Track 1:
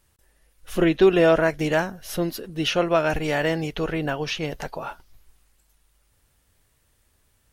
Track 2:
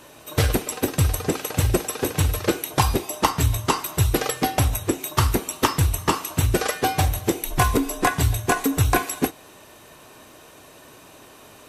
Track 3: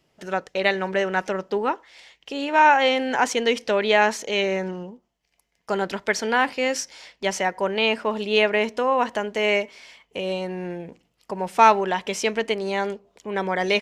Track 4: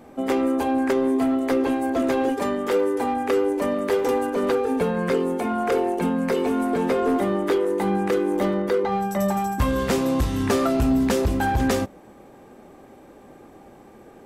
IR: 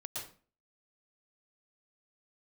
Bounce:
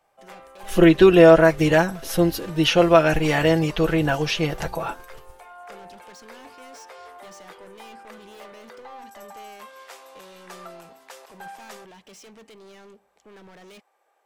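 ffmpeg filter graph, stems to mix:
-filter_complex "[0:a]agate=range=0.0224:threshold=0.00282:ratio=3:detection=peak,aecho=1:1:6:0.62,volume=1.33,asplit=2[s0][s1];[1:a]alimiter=limit=0.224:level=0:latency=1:release=106,volume=0.119[s2];[2:a]acrossover=split=350|3000[s3][s4][s5];[s4]acompressor=threshold=0.0282:ratio=3[s6];[s3][s6][s5]amix=inputs=3:normalize=0,asoftclip=type=hard:threshold=0.0237,volume=0.237[s7];[3:a]highpass=f=640:w=0.5412,highpass=f=640:w=1.3066,volume=0.178[s8];[s1]apad=whole_len=515284[s9];[s2][s9]sidechaingate=range=0.0251:threshold=0.00891:ratio=16:detection=peak[s10];[s0][s10][s7][s8]amix=inputs=4:normalize=0"

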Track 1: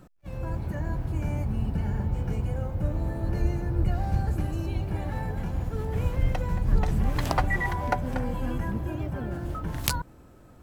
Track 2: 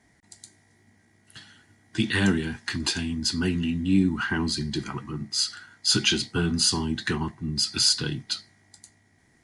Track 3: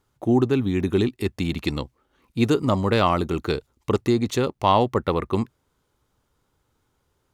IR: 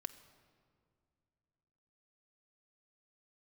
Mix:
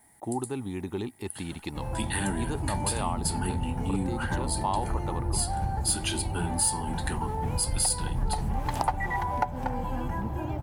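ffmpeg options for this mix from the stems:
-filter_complex "[0:a]adelay=1500,volume=1.19[s0];[1:a]aexciter=amount=10.2:drive=8.7:freq=8900,volume=0.668[s1];[2:a]volume=0.299[s2];[s0][s1][s2]amix=inputs=3:normalize=0,equalizer=f=860:w=3.9:g=14.5,acompressor=threshold=0.0316:ratio=2"

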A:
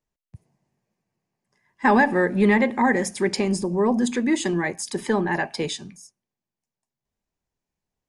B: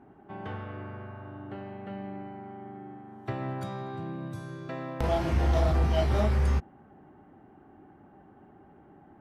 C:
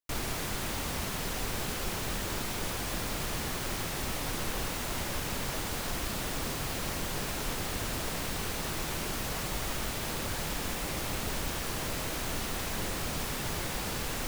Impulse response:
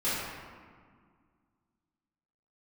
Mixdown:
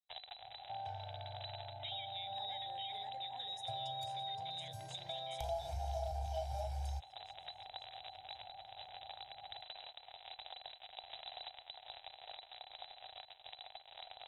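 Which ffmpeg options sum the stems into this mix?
-filter_complex "[0:a]volume=0.178,asplit=2[s0][s1];[s1]volume=0.141[s2];[1:a]aecho=1:1:1.3:0.73,adynamicequalizer=threshold=0.00562:dfrequency=1900:dqfactor=0.7:tfrequency=1900:tqfactor=0.7:attack=5:release=100:ratio=0.375:range=2.5:mode=boostabove:tftype=highshelf,adelay=400,volume=0.299[s3];[2:a]acrusher=bits=3:mix=0:aa=0.5,volume=1.12[s4];[s0][s4]amix=inputs=2:normalize=0,lowpass=f=3400:t=q:w=0.5098,lowpass=f=3400:t=q:w=0.6013,lowpass=f=3400:t=q:w=0.9,lowpass=f=3400:t=q:w=2.563,afreqshift=-4000,alimiter=level_in=2.11:limit=0.0631:level=0:latency=1:release=467,volume=0.473,volume=1[s5];[s2]aecho=0:1:521|1042|1563|2084|2605|3126:1|0.43|0.185|0.0795|0.0342|0.0147[s6];[s3][s5][s6]amix=inputs=3:normalize=0,firequalizer=gain_entry='entry(110,0);entry(210,-23);entry(750,14);entry(1100,-12);entry(5400,7)':delay=0.05:min_phase=1,acompressor=threshold=0.00708:ratio=2.5"

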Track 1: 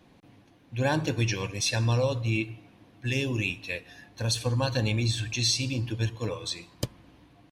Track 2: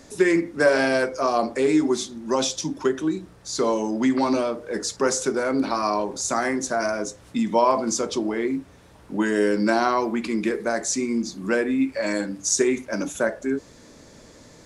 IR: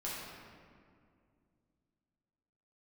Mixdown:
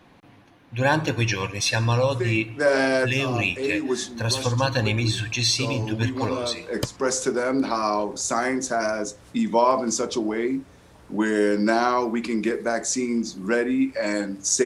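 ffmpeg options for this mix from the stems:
-filter_complex "[0:a]equalizer=f=1300:t=o:w=2:g=7,volume=1.33,asplit=2[s0][s1];[1:a]adelay=2000,volume=1[s2];[s1]apad=whole_len=734414[s3];[s2][s3]sidechaincompress=threshold=0.0282:ratio=8:attack=23:release=336[s4];[s0][s4]amix=inputs=2:normalize=0"

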